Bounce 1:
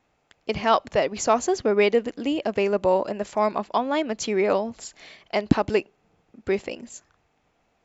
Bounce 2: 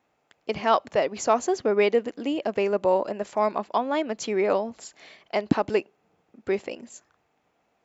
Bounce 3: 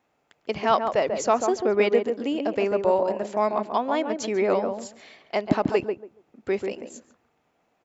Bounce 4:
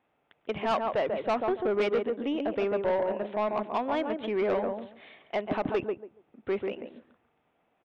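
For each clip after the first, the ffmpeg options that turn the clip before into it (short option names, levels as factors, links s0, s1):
-af "highpass=f=230:p=1,equalizer=f=5200:w=0.34:g=-4"
-filter_complex "[0:a]asplit=2[s0][s1];[s1]adelay=141,lowpass=f=910:p=1,volume=0.631,asplit=2[s2][s3];[s3]adelay=141,lowpass=f=910:p=1,volume=0.21,asplit=2[s4][s5];[s5]adelay=141,lowpass=f=910:p=1,volume=0.21[s6];[s0][s2][s4][s6]amix=inputs=4:normalize=0"
-af "aresample=8000,aresample=44100,asoftclip=type=tanh:threshold=0.119,volume=0.75"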